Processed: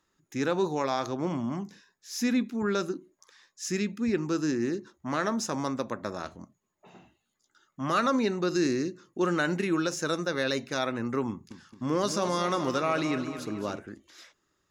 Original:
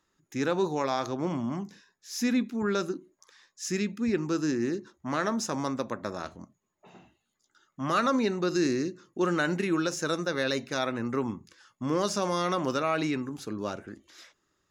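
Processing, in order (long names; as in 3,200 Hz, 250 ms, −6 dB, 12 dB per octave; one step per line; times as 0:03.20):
0:11.29–0:13.79: feedback echo with a swinging delay time 217 ms, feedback 51%, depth 62 cents, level −10.5 dB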